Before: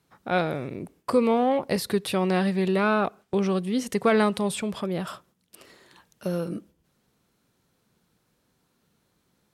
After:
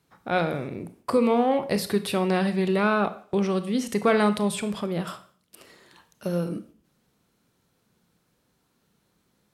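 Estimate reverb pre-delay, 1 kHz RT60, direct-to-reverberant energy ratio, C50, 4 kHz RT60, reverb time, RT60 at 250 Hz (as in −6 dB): 19 ms, 0.45 s, 10.5 dB, 14.0 dB, 0.45 s, 0.45 s, 0.50 s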